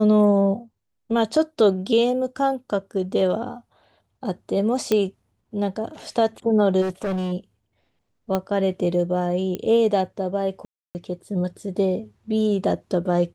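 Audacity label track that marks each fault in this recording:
4.920000	4.920000	pop -8 dBFS
6.810000	7.330000	clipped -22 dBFS
8.350000	8.350000	pop -10 dBFS
9.550000	9.550000	pop -15 dBFS
10.650000	10.950000	gap 0.299 s

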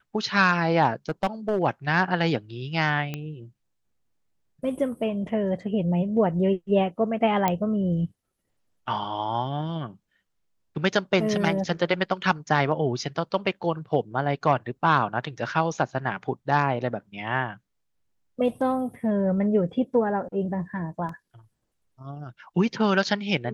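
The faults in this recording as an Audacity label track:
1.090000	1.630000	clipped -18.5 dBFS
3.140000	3.140000	pop -17 dBFS
7.480000	7.480000	pop -9 dBFS
21.090000	21.090000	gap 3.1 ms

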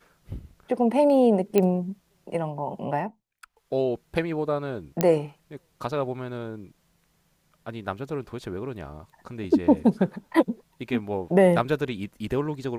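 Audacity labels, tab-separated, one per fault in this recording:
1.580000	1.580000	pop -9 dBFS
5.010000	5.010000	pop -7 dBFS

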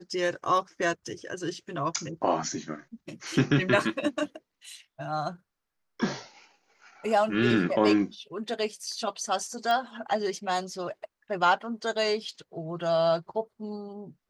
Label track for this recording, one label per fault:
9.710000	9.710000	pop -17 dBFS

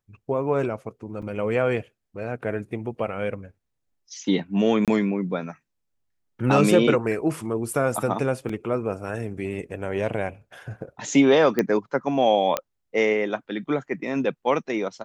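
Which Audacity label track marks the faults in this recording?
1.220000	1.220000	gap 4.7 ms
4.850000	4.880000	gap 27 ms
8.490000	8.490000	gap 4.2 ms
11.590000	11.590000	pop -9 dBFS
12.570000	12.570000	pop -8 dBFS

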